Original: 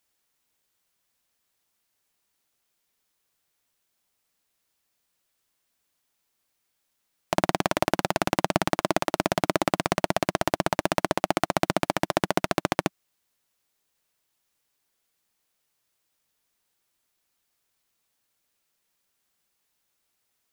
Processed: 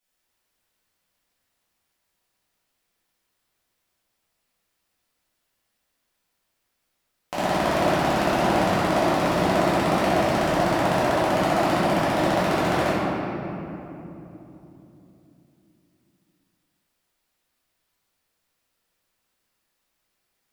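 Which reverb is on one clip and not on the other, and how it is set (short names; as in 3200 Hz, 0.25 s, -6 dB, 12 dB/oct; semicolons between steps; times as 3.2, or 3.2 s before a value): shoebox room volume 160 m³, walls hard, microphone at 2 m; gain -9.5 dB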